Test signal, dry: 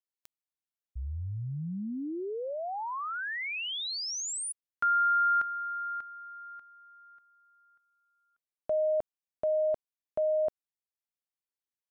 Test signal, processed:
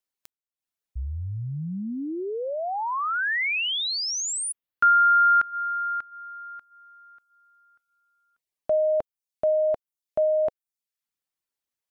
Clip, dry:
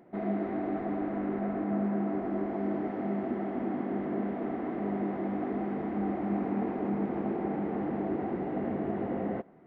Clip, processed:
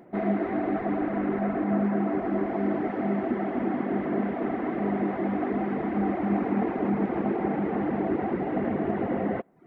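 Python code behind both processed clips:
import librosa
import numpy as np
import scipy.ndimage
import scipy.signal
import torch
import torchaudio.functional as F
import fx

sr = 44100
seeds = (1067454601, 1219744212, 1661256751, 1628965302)

y = fx.dereverb_blind(x, sr, rt60_s=0.53)
y = fx.dynamic_eq(y, sr, hz=1900.0, q=0.76, threshold_db=-48.0, ratio=4.0, max_db=4)
y = y * 10.0 ** (6.0 / 20.0)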